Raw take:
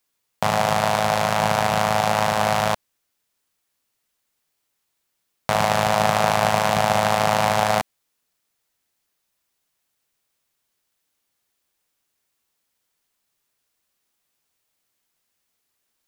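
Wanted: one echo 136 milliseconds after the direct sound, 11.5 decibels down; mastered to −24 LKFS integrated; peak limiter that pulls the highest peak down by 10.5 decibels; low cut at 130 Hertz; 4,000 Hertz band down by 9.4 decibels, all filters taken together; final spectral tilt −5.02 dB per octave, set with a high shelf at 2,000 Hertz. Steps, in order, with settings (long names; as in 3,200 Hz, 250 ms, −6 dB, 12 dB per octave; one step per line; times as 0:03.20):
high-pass filter 130 Hz
high-shelf EQ 2,000 Hz −6 dB
parametric band 4,000 Hz −6.5 dB
brickwall limiter −16 dBFS
single-tap delay 136 ms −11.5 dB
level +4 dB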